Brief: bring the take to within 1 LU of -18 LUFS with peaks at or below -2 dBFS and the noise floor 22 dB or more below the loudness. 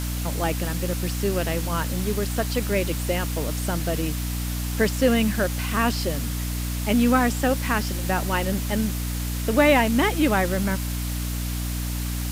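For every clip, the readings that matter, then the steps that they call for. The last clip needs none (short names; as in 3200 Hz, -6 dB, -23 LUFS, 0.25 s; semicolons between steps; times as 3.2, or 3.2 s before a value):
hum 60 Hz; harmonics up to 300 Hz; hum level -25 dBFS; noise floor -28 dBFS; noise floor target -46 dBFS; loudness -24.0 LUFS; peak -5.5 dBFS; loudness target -18.0 LUFS
-> notches 60/120/180/240/300 Hz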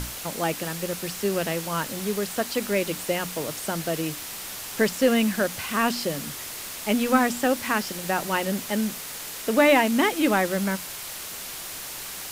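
hum none; noise floor -36 dBFS; noise floor target -48 dBFS
-> denoiser 12 dB, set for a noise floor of -36 dBFS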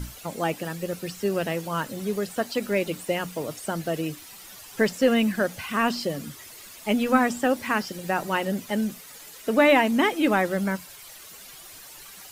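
noise floor -45 dBFS; noise floor target -48 dBFS
-> denoiser 6 dB, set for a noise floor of -45 dBFS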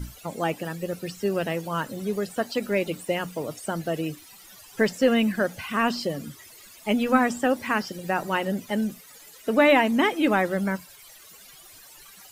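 noise floor -49 dBFS; loudness -25.5 LUFS; peak -5.5 dBFS; loudness target -18.0 LUFS
-> gain +7.5 dB; limiter -2 dBFS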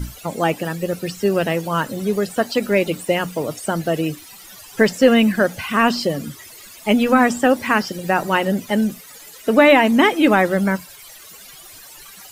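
loudness -18.5 LUFS; peak -2.0 dBFS; noise floor -41 dBFS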